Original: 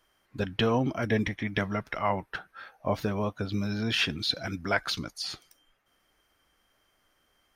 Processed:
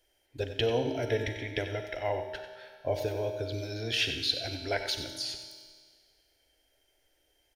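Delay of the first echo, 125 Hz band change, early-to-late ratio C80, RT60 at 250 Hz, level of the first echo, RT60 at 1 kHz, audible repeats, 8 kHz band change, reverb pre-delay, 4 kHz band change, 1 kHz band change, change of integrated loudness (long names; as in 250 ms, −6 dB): 93 ms, −4.5 dB, 6.0 dB, 1.8 s, −10.5 dB, 1.8 s, 1, +1.0 dB, 37 ms, 0.0 dB, −6.5 dB, −2.5 dB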